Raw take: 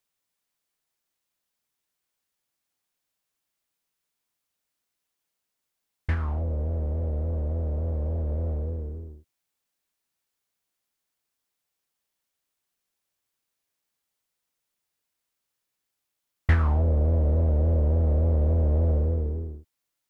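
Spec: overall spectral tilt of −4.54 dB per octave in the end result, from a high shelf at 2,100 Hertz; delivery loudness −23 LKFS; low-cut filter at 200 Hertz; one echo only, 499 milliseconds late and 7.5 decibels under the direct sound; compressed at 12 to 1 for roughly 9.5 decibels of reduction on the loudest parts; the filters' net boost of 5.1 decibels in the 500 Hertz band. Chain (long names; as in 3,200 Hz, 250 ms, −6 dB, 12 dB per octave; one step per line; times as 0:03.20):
high-pass filter 200 Hz
parametric band 500 Hz +5.5 dB
high-shelf EQ 2,100 Hz +8 dB
downward compressor 12 to 1, threshold −33 dBFS
single-tap delay 499 ms −7.5 dB
level +15 dB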